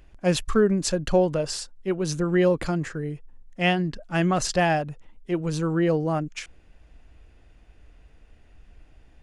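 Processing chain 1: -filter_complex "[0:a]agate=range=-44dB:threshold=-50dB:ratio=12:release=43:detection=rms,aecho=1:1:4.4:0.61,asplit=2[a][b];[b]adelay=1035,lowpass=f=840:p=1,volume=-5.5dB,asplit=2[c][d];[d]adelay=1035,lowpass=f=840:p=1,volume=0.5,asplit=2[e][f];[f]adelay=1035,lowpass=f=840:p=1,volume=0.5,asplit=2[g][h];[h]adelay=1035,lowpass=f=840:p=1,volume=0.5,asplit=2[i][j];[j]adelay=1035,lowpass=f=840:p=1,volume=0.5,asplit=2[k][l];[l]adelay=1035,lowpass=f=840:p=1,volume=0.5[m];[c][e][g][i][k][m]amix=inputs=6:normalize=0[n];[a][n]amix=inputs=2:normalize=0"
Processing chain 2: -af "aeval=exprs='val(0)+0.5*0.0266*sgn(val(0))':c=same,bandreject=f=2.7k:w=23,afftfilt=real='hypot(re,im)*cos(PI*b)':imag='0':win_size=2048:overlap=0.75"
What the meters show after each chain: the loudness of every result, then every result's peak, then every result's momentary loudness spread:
-24.0, -26.5 LUFS; -6.0, -4.5 dBFS; 17, 21 LU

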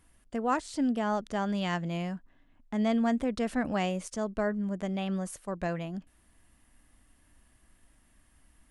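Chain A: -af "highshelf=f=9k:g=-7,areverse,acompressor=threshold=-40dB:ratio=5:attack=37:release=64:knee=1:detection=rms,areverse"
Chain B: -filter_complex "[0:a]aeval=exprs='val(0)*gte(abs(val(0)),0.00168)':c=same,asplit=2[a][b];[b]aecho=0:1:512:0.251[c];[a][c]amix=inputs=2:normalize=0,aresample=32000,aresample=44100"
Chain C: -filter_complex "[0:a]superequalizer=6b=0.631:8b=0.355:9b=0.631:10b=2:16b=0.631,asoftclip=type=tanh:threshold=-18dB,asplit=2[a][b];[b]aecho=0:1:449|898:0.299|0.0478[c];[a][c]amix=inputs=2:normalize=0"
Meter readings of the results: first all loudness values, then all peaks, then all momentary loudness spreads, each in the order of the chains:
-40.5, -31.5, -32.5 LUFS; -27.0, -16.5, -18.5 dBFS; 4, 12, 11 LU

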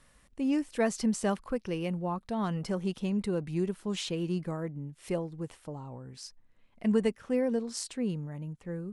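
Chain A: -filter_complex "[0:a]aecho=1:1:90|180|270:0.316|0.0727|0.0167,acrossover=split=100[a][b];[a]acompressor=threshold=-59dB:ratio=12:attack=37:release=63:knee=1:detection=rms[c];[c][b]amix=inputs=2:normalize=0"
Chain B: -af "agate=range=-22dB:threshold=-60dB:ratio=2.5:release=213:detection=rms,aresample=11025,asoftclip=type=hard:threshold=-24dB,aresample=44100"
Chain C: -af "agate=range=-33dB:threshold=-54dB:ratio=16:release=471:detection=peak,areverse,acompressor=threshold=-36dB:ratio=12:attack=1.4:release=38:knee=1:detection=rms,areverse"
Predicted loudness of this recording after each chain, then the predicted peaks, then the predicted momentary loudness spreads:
-32.0, -33.5, -42.0 LUFS; -15.0, -23.0, -27.5 dBFS; 14, 12, 5 LU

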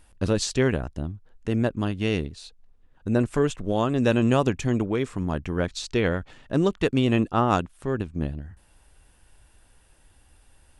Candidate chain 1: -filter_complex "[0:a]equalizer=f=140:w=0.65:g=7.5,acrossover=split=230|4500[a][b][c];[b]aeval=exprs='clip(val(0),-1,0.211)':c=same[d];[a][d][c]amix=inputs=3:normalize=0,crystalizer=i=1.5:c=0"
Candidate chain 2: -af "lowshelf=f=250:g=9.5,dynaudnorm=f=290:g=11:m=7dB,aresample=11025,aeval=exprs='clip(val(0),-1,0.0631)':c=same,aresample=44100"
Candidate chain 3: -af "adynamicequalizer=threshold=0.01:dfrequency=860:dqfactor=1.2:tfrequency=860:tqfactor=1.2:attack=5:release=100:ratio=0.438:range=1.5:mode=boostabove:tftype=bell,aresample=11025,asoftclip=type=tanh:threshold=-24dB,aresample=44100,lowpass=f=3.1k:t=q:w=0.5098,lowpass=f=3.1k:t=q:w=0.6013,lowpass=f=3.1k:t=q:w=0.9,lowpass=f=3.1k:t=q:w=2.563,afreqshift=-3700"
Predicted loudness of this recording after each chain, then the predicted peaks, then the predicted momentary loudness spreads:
-21.0, -20.5, -27.0 LUFS; -4.5, -1.5, -14.5 dBFS; 11, 10, 7 LU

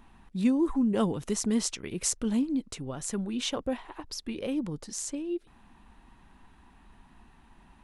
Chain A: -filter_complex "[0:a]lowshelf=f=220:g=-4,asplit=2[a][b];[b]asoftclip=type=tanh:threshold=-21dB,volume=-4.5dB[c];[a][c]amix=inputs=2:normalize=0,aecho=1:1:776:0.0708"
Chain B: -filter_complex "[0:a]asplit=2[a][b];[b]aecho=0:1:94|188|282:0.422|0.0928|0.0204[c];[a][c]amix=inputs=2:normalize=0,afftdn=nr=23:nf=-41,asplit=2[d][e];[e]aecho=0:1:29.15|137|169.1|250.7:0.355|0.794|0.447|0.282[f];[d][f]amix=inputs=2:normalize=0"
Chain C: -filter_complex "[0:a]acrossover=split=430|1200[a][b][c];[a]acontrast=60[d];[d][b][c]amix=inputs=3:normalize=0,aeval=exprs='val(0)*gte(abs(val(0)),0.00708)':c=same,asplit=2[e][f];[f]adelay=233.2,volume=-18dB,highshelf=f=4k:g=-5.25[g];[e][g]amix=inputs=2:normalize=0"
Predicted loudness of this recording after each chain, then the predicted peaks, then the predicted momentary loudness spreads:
-28.0, -27.0, -25.5 LUFS; -9.5, -10.5, -10.5 dBFS; 10, 11, 12 LU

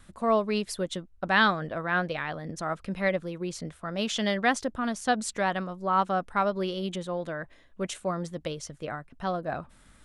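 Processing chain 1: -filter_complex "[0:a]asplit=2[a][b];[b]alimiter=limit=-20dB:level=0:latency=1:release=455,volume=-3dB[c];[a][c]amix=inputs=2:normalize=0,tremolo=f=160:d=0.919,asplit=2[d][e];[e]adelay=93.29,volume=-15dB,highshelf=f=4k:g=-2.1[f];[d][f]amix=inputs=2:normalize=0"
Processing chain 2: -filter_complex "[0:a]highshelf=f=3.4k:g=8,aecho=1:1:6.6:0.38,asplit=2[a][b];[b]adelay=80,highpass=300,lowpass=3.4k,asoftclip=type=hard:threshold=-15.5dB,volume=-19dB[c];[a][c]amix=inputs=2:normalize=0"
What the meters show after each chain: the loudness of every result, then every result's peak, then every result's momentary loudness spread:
-30.0, -27.5 LUFS; -7.5, -6.5 dBFS; 10, 11 LU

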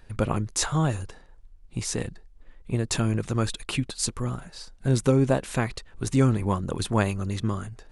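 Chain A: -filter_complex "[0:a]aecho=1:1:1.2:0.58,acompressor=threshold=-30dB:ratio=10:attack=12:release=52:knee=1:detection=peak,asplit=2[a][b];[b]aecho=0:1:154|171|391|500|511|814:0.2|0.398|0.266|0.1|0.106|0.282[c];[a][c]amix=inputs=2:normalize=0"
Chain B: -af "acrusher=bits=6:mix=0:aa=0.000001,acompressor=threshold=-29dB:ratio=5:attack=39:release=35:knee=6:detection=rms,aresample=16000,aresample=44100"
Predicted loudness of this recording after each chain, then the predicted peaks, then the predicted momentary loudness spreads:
-32.5, -31.5 LUFS; -14.0, -15.5 dBFS; 6, 8 LU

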